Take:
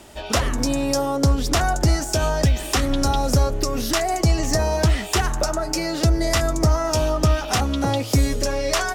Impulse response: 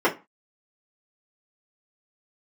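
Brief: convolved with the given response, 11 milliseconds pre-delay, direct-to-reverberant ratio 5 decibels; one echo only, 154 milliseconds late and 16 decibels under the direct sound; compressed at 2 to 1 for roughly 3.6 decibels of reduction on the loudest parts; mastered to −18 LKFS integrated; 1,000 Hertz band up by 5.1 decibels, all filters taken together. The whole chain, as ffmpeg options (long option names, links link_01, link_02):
-filter_complex "[0:a]equalizer=frequency=1000:width_type=o:gain=7,acompressor=threshold=-19dB:ratio=2,aecho=1:1:154:0.158,asplit=2[link_01][link_02];[1:a]atrim=start_sample=2205,adelay=11[link_03];[link_02][link_03]afir=irnorm=-1:irlink=0,volume=-22.5dB[link_04];[link_01][link_04]amix=inputs=2:normalize=0,volume=3dB"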